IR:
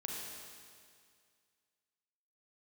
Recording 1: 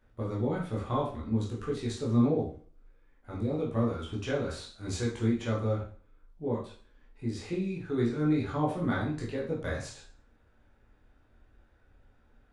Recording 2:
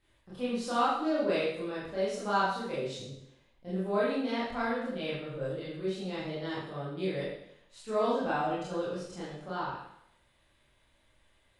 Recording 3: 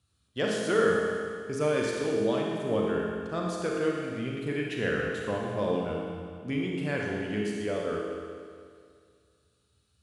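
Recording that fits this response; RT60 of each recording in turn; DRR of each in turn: 3; 0.40, 0.75, 2.1 s; -5.0, -9.5, -2.5 dB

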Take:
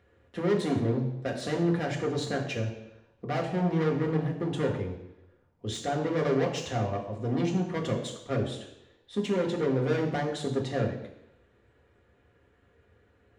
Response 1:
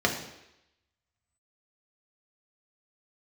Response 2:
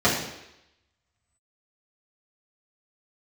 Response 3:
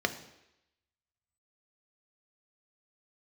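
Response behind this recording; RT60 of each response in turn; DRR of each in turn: 1; 0.85, 0.85, 0.85 s; 0.5, -9.5, 7.0 dB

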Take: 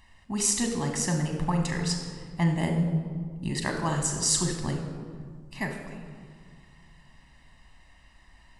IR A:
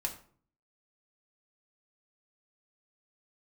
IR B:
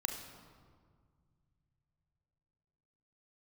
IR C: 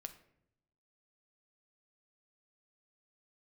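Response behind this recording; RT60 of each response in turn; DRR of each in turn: B; 0.50, 1.9, 0.75 s; 1.0, 3.5, 7.5 dB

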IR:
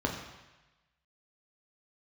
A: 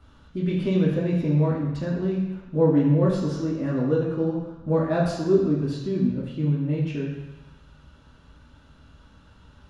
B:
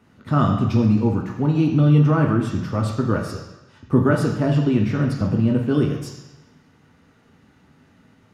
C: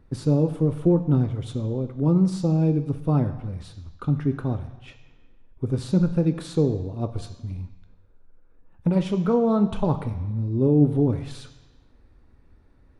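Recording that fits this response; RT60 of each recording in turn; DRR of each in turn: B; 1.1, 1.1, 1.1 s; -5.5, 0.0, 8.0 dB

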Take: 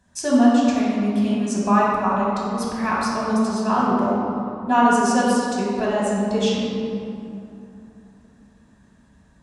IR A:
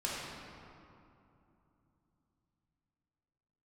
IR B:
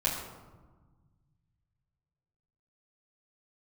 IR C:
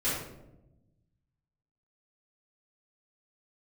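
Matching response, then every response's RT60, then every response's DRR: A; 2.8, 1.3, 0.90 s; -7.0, -8.0, -12.0 dB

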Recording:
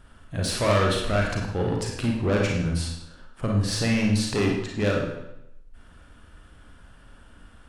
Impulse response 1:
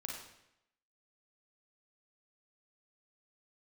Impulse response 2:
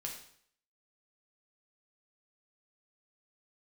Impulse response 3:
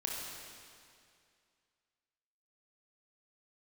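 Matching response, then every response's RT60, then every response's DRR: 1; 0.80, 0.60, 2.3 s; -1.5, -0.5, -3.0 dB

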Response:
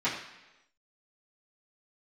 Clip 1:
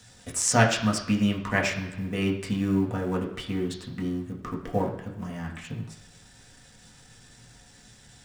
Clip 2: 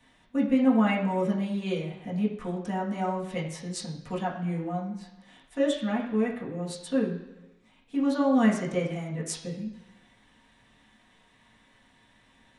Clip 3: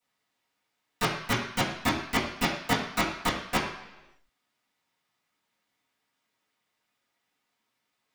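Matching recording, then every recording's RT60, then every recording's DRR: 3; 1.0, 1.0, 1.0 s; -2.0, -6.0, -12.5 dB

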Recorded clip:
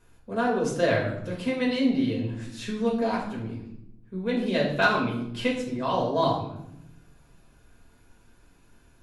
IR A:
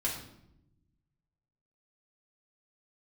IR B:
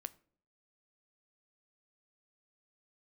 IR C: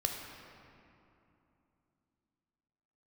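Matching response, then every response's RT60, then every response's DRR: A; 0.80, 0.55, 2.9 s; -3.5, 14.0, 1.0 dB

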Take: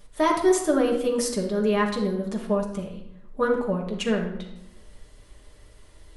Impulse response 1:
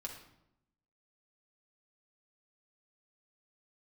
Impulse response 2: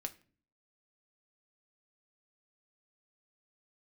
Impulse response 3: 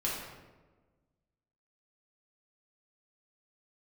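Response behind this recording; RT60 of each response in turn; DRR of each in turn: 1; 0.80 s, not exponential, 1.3 s; -0.5, 5.5, -6.0 dB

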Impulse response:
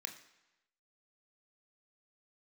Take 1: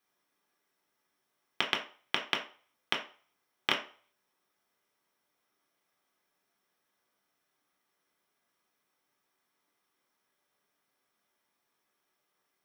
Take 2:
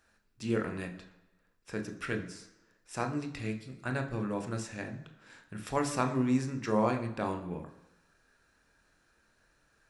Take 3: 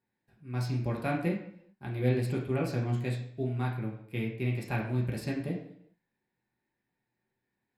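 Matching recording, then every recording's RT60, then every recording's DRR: 2; 0.40, 1.0, 0.75 s; -1.0, 5.0, -3.0 dB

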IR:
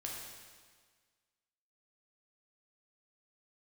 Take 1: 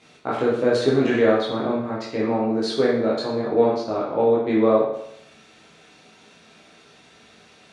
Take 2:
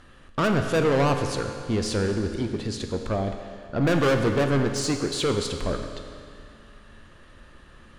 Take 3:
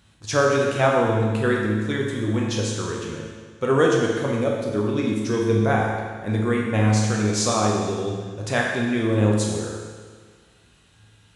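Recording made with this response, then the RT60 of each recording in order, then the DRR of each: 3; 0.75, 2.3, 1.6 s; -6.5, 5.0, -2.5 dB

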